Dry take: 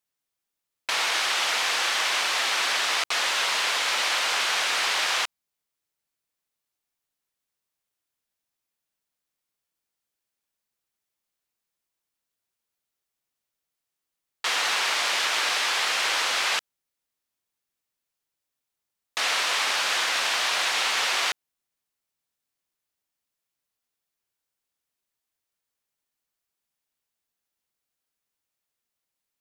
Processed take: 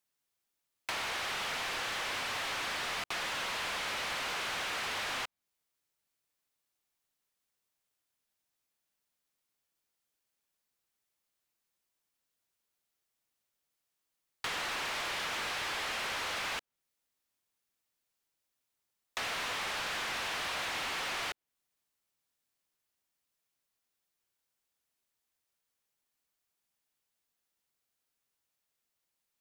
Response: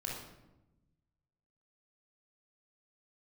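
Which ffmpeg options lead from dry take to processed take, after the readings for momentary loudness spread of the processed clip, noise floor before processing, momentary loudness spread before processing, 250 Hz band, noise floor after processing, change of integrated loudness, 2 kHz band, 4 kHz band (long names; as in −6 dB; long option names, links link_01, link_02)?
3 LU, −85 dBFS, 4 LU, −1.5 dB, −85 dBFS, −11.5 dB, −10.5 dB, −13.0 dB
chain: -filter_complex "[0:a]volume=26dB,asoftclip=hard,volume=-26dB,acrossover=split=670|3300[link_01][link_02][link_03];[link_01]acompressor=threshold=-45dB:ratio=4[link_04];[link_02]acompressor=threshold=-37dB:ratio=4[link_05];[link_03]acompressor=threshold=-46dB:ratio=4[link_06];[link_04][link_05][link_06]amix=inputs=3:normalize=0"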